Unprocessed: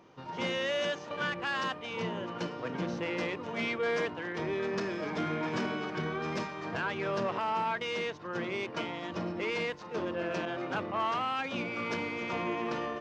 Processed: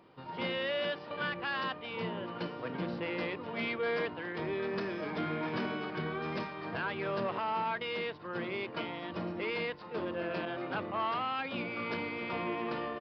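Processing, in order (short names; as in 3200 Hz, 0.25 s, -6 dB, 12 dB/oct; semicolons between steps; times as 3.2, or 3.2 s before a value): downsampling 11025 Hz; gain -2 dB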